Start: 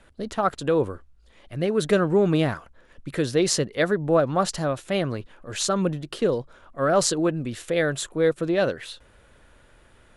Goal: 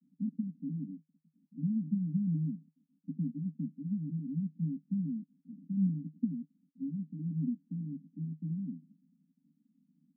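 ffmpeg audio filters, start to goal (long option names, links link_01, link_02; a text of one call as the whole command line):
ffmpeg -i in.wav -af "acompressor=threshold=-22dB:ratio=6,aresample=8000,acrusher=bits=6:dc=4:mix=0:aa=0.000001,aresample=44100,asuperpass=centerf=210:order=20:qfactor=1.6" out.wav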